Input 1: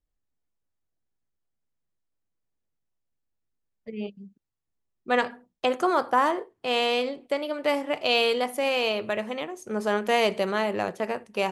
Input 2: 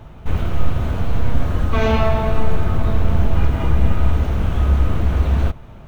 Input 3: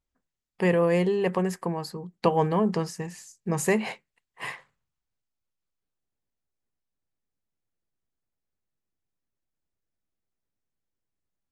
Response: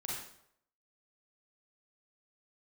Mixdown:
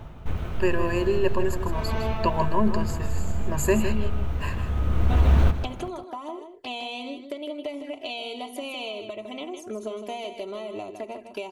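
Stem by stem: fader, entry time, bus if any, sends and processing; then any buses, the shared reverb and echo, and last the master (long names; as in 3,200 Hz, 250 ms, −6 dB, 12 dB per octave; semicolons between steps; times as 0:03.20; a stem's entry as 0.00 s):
+1.0 dB, 0.00 s, no send, echo send −8.5 dB, comb filter 3 ms, depth 83%; downward compressor 12 to 1, threshold −30 dBFS, peak gain reduction 17 dB; flanger swept by the level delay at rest 3.7 ms, full sweep at −32.5 dBFS
−0.5 dB, 0.00 s, no send, echo send −11 dB, brickwall limiter −8 dBFS, peak gain reduction 5 dB; automatic ducking −15 dB, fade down 0.65 s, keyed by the third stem
−4.5 dB, 0.00 s, no send, echo send −9.5 dB, EQ curve with evenly spaced ripples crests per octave 1.4, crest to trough 18 dB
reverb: not used
echo: single-tap delay 158 ms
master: no processing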